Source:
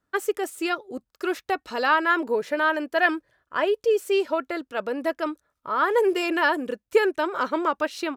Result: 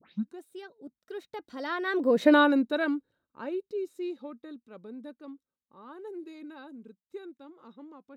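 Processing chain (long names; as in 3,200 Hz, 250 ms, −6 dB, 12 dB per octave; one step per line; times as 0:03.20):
turntable start at the beginning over 0.49 s
source passing by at 0:02.30, 36 m/s, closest 4.3 metres
hollow resonant body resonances 210/3,800 Hz, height 17 dB, ringing for 20 ms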